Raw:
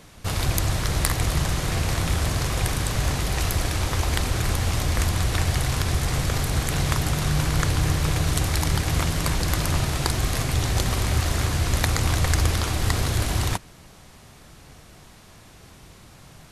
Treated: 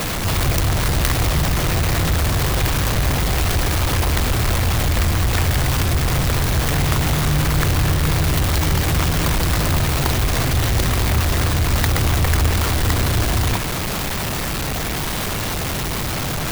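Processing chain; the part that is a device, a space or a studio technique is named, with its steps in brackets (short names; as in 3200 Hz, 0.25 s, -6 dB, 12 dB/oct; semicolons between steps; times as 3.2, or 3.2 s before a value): early CD player with a faulty converter (zero-crossing step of -17 dBFS; clock jitter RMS 0.032 ms)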